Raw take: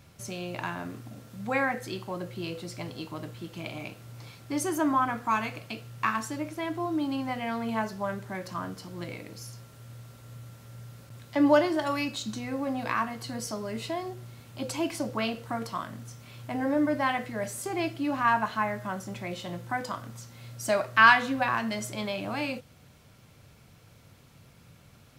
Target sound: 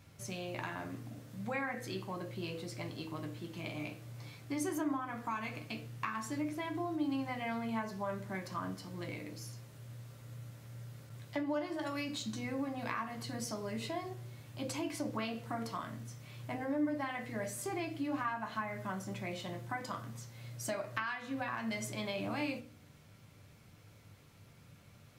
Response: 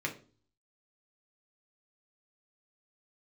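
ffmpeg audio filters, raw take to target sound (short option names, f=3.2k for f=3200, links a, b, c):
-filter_complex "[0:a]acompressor=threshold=-29dB:ratio=16,asplit=2[a][b];[1:a]atrim=start_sample=2205,adelay=10[c];[b][c]afir=irnorm=-1:irlink=0,volume=-9dB[d];[a][d]amix=inputs=2:normalize=0,volume=-5.5dB"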